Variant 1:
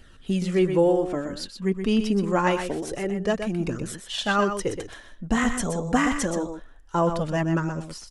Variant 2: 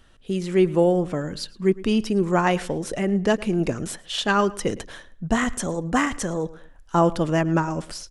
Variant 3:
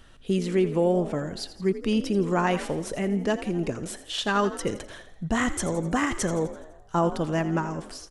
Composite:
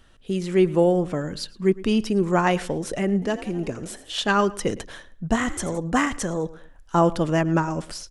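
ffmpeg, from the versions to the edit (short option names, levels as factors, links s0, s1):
-filter_complex "[2:a]asplit=2[s0][s1];[1:a]asplit=3[s2][s3][s4];[s2]atrim=end=3.222[s5];[s0]atrim=start=3.218:end=4.162[s6];[s3]atrim=start=4.158:end=5.362[s7];[s1]atrim=start=5.358:end=5.782[s8];[s4]atrim=start=5.778[s9];[s5][s6]acrossfade=d=0.004:c1=hsin:c2=hsin[s10];[s10][s7]acrossfade=d=0.004:c1=hsin:c2=hsin[s11];[s11][s8]acrossfade=d=0.004:c1=hsin:c2=hsin[s12];[s12][s9]acrossfade=d=0.004:c1=hsin:c2=hsin"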